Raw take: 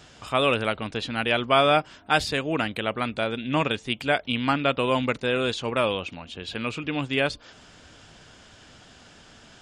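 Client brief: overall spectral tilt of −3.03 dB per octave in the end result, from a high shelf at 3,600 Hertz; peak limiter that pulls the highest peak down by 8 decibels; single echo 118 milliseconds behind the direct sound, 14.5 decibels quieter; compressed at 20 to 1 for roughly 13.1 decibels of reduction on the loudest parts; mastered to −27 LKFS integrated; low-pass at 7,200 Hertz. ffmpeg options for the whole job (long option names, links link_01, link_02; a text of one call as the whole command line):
ffmpeg -i in.wav -af "lowpass=7200,highshelf=frequency=3600:gain=3.5,acompressor=threshold=-27dB:ratio=20,alimiter=limit=-21.5dB:level=0:latency=1,aecho=1:1:118:0.188,volume=6.5dB" out.wav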